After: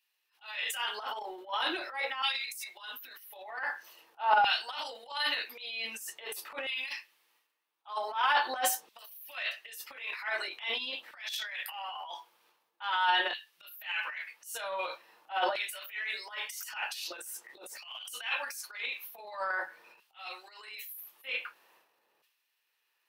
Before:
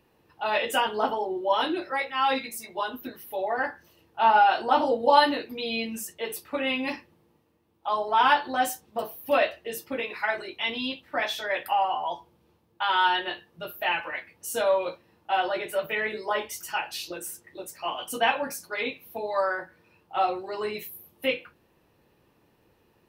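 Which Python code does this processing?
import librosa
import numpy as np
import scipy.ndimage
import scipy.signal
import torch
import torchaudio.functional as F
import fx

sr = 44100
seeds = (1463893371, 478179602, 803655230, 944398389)

y = fx.filter_lfo_highpass(x, sr, shape='saw_down', hz=0.45, low_hz=640.0, high_hz=2900.0, q=0.87)
y = fx.transient(y, sr, attack_db=-12, sustain_db=11)
y = F.gain(torch.from_numpy(y), -4.5).numpy()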